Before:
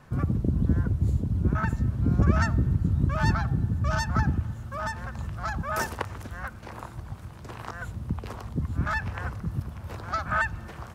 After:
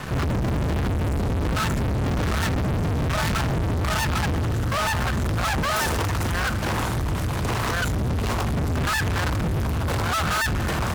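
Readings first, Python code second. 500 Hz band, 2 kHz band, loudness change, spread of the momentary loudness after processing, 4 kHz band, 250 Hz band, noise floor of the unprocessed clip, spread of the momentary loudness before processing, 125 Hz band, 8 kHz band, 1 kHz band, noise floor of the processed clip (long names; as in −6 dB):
+9.0 dB, +6.0 dB, +4.0 dB, 2 LU, +15.0 dB, +3.5 dB, −43 dBFS, 14 LU, +3.0 dB, +13.5 dB, +6.0 dB, −25 dBFS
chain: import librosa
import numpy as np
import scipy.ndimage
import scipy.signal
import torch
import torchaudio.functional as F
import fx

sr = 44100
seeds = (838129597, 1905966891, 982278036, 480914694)

y = fx.fuzz(x, sr, gain_db=48.0, gate_db=-55.0)
y = F.gain(torch.from_numpy(y), -9.0).numpy()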